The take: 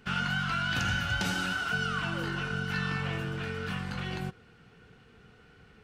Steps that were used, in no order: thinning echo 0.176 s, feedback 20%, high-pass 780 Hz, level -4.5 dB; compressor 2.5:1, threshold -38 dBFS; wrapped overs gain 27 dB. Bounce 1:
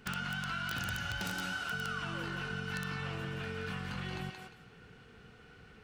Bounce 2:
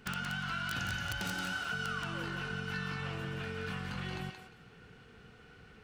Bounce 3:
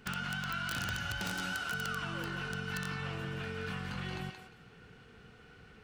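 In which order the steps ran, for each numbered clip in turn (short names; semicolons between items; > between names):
thinning echo > compressor > wrapped overs; compressor > wrapped overs > thinning echo; compressor > thinning echo > wrapped overs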